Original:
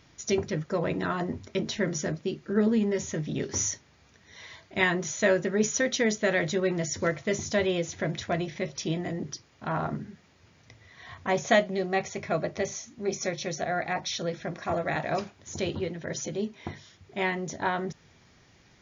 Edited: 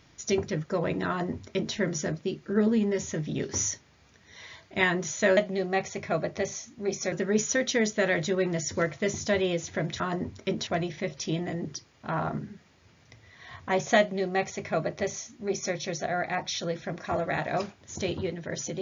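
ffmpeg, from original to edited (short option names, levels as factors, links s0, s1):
-filter_complex "[0:a]asplit=5[s0][s1][s2][s3][s4];[s0]atrim=end=5.372[s5];[s1]atrim=start=11.568:end=13.322[s6];[s2]atrim=start=5.368:end=8.252[s7];[s3]atrim=start=1.078:end=1.752[s8];[s4]atrim=start=8.248[s9];[s5][s6]acrossfade=d=0.004:c1=hsin:c2=hsin[s10];[s10][s7]acrossfade=d=0.004:c1=hsin:c2=hsin[s11];[s11][s8]acrossfade=d=0.004:c1=hsin:c2=hsin[s12];[s12][s9]acrossfade=d=0.004:c1=hsin:c2=hsin"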